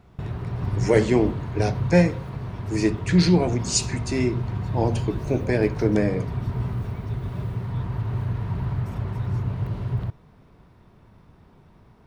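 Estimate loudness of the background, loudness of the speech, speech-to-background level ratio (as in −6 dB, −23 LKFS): −29.0 LKFS, −23.5 LKFS, 5.5 dB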